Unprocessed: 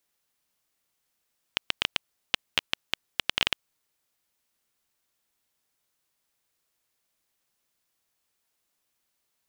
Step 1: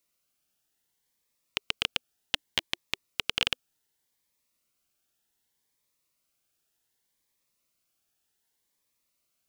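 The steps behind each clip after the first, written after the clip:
phaser whose notches keep moving one way rising 0.66 Hz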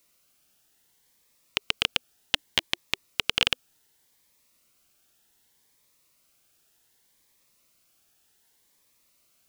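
boost into a limiter +12 dB
level −1 dB

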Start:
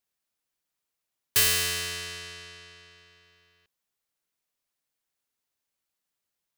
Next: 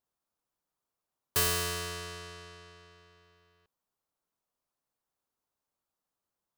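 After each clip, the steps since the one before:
high shelf with overshoot 1,500 Hz −8 dB, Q 1.5
level +1.5 dB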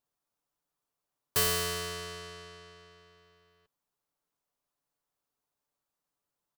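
comb filter 6.9 ms, depth 33%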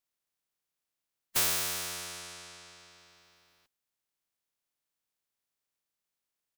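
ceiling on every frequency bin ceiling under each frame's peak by 26 dB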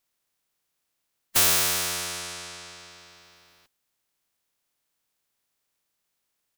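hard clipping −23.5 dBFS, distortion −15 dB
level +9 dB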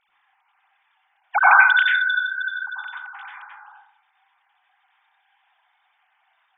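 three sine waves on the formant tracks
dense smooth reverb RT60 0.63 s, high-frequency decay 0.25×, pre-delay 80 ms, DRR −7 dB
level +2 dB

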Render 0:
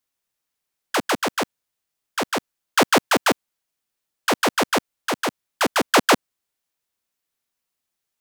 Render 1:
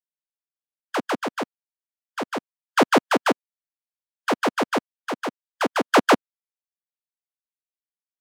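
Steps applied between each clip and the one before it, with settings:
every bin expanded away from the loudest bin 1.5 to 1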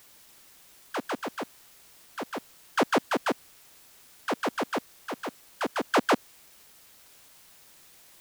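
bit-depth reduction 8 bits, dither triangular
level −7 dB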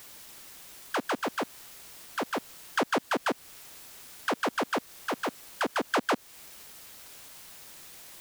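in parallel at −3 dB: brickwall limiter −25.5 dBFS, peak gain reduction 11 dB
on the sum: downward compressor 2 to 1, threshold −32 dBFS, peak gain reduction 8.5 dB
level +2 dB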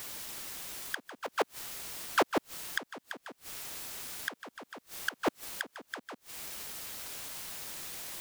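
gate with flip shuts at −24 dBFS, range −25 dB
level +6 dB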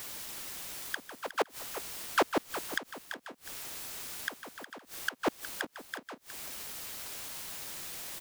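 single-tap delay 363 ms −12 dB

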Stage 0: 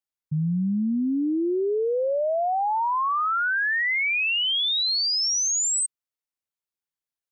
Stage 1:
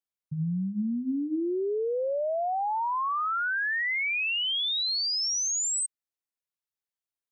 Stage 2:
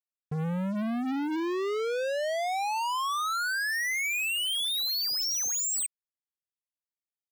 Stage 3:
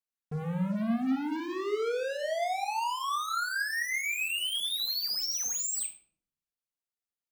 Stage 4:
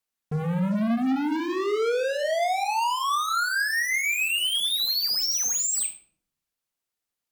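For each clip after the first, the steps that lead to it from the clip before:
mains-hum notches 50/100/150/200/250/300 Hz; level −4.5 dB
leveller curve on the samples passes 5; level −5.5 dB
rectangular room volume 850 cubic metres, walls furnished, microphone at 1.7 metres; level −4 dB
sine wavefolder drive 4 dB, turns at −20.5 dBFS

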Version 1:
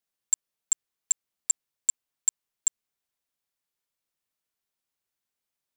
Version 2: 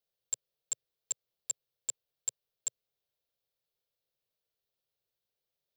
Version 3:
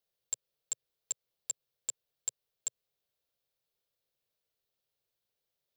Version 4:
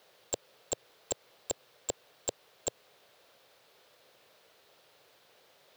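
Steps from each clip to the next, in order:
graphic EQ with 10 bands 125 Hz +6 dB, 250 Hz −10 dB, 500 Hz +10 dB, 1,000 Hz −7 dB, 2,000 Hz −6 dB, 4,000 Hz +5 dB, 8,000 Hz −12 dB
downward compressor, threshold −32 dBFS, peak gain reduction 4.5 dB; level +1.5 dB
mid-hump overdrive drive 34 dB, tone 1,200 Hz, clips at −16 dBFS; level +7 dB

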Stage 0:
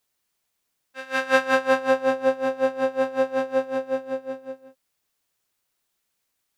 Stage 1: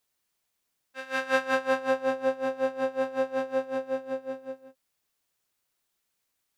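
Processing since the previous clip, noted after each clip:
in parallel at −2 dB: downward compressor, threshold −28 dBFS, peak gain reduction 15 dB
on the sum: every ending faded ahead of time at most 460 dB per second
level −7.5 dB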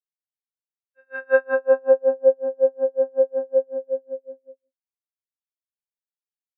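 every bin expanded away from the loudest bin 2.5 to 1
level +4.5 dB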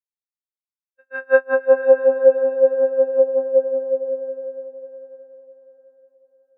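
downward expander −50 dBFS
feedback delay with all-pass diffusion 523 ms, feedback 43%, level −10 dB
level +3 dB

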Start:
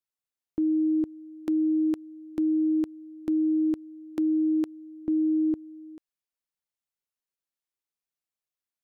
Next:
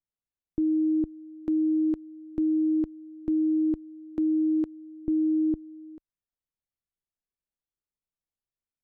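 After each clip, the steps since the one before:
spectral tilt −3.5 dB per octave
level −6 dB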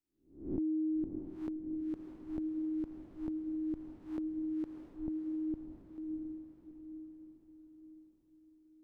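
peak hold with a rise ahead of every peak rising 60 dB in 0.47 s
downward compressor, threshold −29 dBFS, peak gain reduction 6.5 dB
feedback delay with all-pass diffusion 674 ms, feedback 46%, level −5 dB
level −3 dB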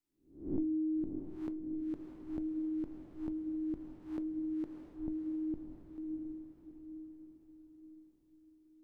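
rectangular room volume 220 cubic metres, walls furnished, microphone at 0.39 metres

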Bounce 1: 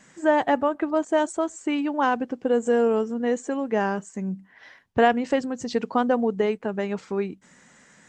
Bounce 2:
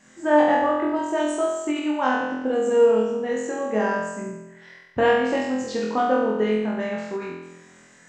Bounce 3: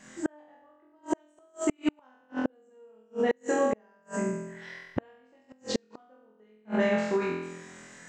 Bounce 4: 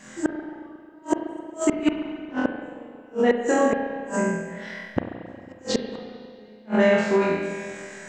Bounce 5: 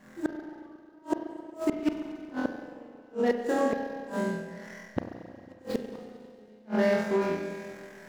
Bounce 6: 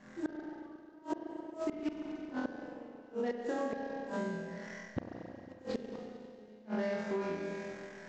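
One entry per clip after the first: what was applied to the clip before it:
flutter between parallel walls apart 4 metres, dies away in 1 s; every ending faded ahead of time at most 110 dB per second; level −3.5 dB
gate with flip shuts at −17 dBFS, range −40 dB; level +2.5 dB
convolution reverb RT60 2.2 s, pre-delay 33 ms, DRR 5 dB; level +6 dB
running median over 15 samples; level −6 dB
Butterworth low-pass 7,400 Hz 48 dB per octave; downward compressor 3 to 1, threshold −33 dBFS, peak gain reduction 10 dB; level −1.5 dB

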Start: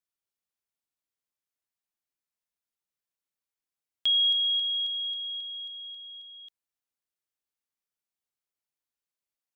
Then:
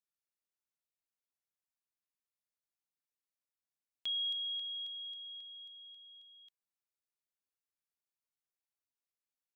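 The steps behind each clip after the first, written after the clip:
notch filter 3,200 Hz, Q 12
level −7.5 dB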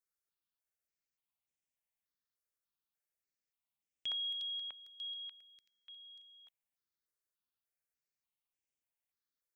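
step-sequenced phaser 3.4 Hz 800–4,200 Hz
level +2 dB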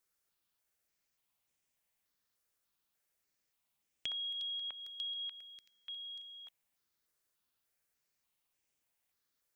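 downward compressor, threshold −48 dBFS, peak gain reduction 11.5 dB
level +9 dB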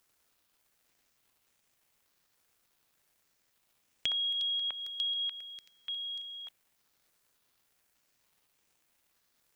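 surface crackle 360 per second −69 dBFS
level +7.5 dB

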